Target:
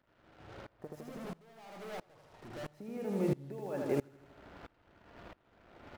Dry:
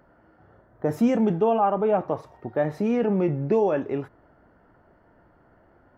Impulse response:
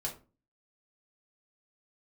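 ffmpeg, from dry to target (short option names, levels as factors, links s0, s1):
-filter_complex "[0:a]acompressor=threshold=0.02:ratio=10,asettb=1/sr,asplit=3[s0][s1][s2];[s0]atrim=end=0.874[s3];[s1]atrim=start=0.87:end=2.74,asetpts=PTS-STARTPTS,afade=t=in:d=0.004:c=qsin,afade=t=out:st=1.866:d=0.004:c=qsin,aeval=exprs='(tanh(251*val(0)+0.25)-tanh(0.25))/251':c=same[s4];[s2]atrim=start=2.736[s5];[s3][s4]acrossfade=d=0.004:c1=hsin:c2=qsin[s6];[s6][s5]acrossfade=d=0.004:c1=qsin:c2=hsin,acrusher=bits=8:mix=0:aa=0.5,aecho=1:1:80|160|240|320|400|480|560|640:0.562|0.326|0.189|0.11|0.0636|0.0369|0.0214|0.0124,aeval=exprs='val(0)*pow(10,-25*if(lt(mod(-1.5*n/s,1),2*abs(-1.5)/1000),1-mod(-1.5*n/s,1)/(2*abs(-1.5)/1000),(mod(-1.5*n/s,1)-2*abs(-1.5)/1000)/(1-2*abs(-1.5)/1000))/20)':c=same,volume=2.51"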